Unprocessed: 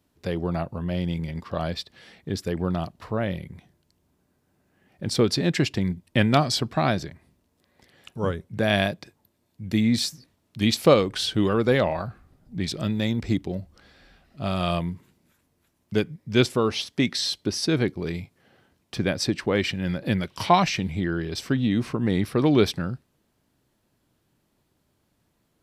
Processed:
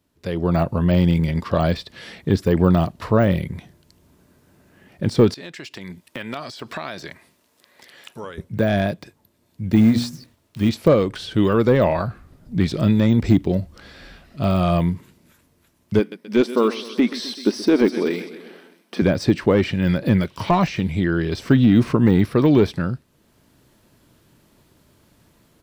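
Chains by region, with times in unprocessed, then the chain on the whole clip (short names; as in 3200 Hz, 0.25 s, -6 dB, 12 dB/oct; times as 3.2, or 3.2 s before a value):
5.34–8.38 HPF 890 Hz 6 dB/oct + compressor 5:1, threshold -40 dBFS
9.75–10.69 notches 60/120/180/240/300/360/420/480 Hz + short-mantissa float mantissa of 2-bit
15.99–19.02 brick-wall FIR high-pass 190 Hz + notch 7000 Hz, Q 6.6 + feedback echo 0.128 s, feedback 58%, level -16.5 dB
whole clip: AGC gain up to 13.5 dB; notch 770 Hz, Q 12; de-esser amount 90%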